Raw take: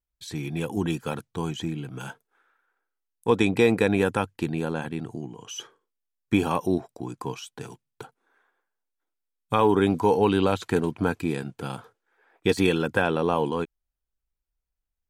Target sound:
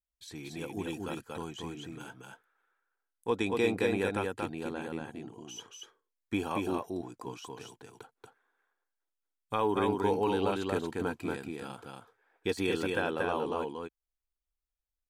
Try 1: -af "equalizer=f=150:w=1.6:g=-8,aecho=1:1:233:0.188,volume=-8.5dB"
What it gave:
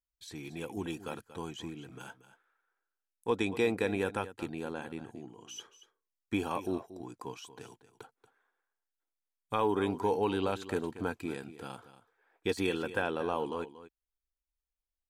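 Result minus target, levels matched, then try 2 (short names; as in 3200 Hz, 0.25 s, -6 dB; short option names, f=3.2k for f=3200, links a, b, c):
echo-to-direct -11.5 dB
-af "equalizer=f=150:w=1.6:g=-8,aecho=1:1:233:0.708,volume=-8.5dB"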